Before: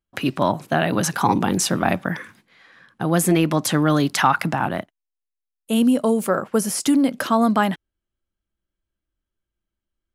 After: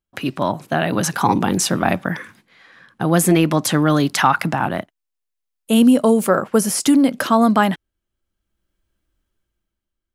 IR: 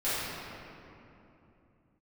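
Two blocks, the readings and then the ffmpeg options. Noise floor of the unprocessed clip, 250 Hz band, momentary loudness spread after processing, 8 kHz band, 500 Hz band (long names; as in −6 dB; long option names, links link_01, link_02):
−85 dBFS, +3.5 dB, 9 LU, +3.0 dB, +3.0 dB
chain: -af "dynaudnorm=framelen=150:gausssize=11:maxgain=12dB,volume=-1dB"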